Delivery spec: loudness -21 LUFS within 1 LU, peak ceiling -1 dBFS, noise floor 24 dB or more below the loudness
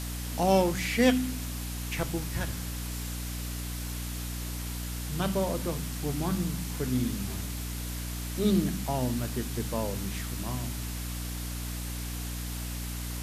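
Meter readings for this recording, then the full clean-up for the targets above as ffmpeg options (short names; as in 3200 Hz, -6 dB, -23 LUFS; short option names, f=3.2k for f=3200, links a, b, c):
hum 60 Hz; harmonics up to 300 Hz; hum level -33 dBFS; noise floor -36 dBFS; noise floor target -56 dBFS; loudness -31.5 LUFS; peak -10.0 dBFS; loudness target -21.0 LUFS
-> -af "bandreject=f=60:t=h:w=4,bandreject=f=120:t=h:w=4,bandreject=f=180:t=h:w=4,bandreject=f=240:t=h:w=4,bandreject=f=300:t=h:w=4"
-af "afftdn=nr=20:nf=-36"
-af "volume=10.5dB,alimiter=limit=-1dB:level=0:latency=1"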